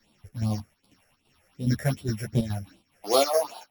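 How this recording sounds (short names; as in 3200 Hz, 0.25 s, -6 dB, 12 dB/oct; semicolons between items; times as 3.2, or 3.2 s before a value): a buzz of ramps at a fixed pitch in blocks of 8 samples; phasing stages 6, 2.6 Hz, lowest notch 250–1800 Hz; chopped level 2.4 Hz, depth 60%, duty 75%; a shimmering, thickened sound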